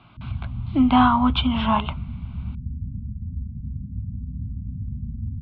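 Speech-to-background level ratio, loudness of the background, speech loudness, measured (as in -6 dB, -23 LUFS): 12.0 dB, -32.0 LUFS, -20.0 LUFS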